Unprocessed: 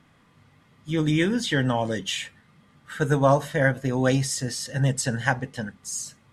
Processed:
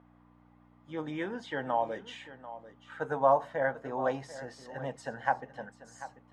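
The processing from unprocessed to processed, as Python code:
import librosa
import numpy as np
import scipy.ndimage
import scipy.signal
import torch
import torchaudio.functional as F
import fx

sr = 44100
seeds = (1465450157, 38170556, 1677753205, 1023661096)

y = fx.add_hum(x, sr, base_hz=60, snr_db=13)
y = fx.bandpass_q(y, sr, hz=820.0, q=2.1)
y = y + 10.0 ** (-15.0 / 20.0) * np.pad(y, (int(741 * sr / 1000.0), 0))[:len(y)]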